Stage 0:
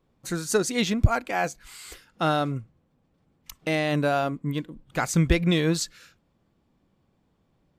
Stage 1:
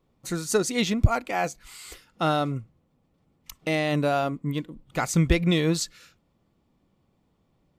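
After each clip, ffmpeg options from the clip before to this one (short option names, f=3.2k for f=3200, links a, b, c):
-af "bandreject=f=1.6k:w=9.1"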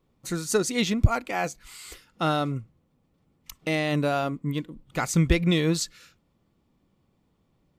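-af "equalizer=f=690:t=o:w=0.77:g=-2.5"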